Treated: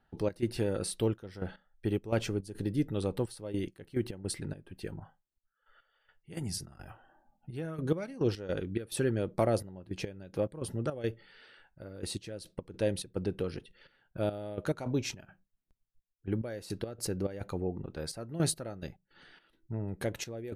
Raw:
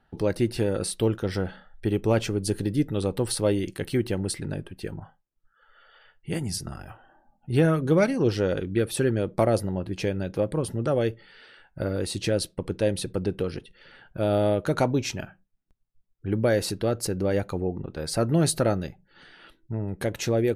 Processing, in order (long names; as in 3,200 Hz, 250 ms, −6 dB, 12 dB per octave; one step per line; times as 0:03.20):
gate pattern "xx.xxxxx..x..x." 106 BPM −12 dB
0:02.06–0:04.39: one half of a high-frequency compander decoder only
level −6 dB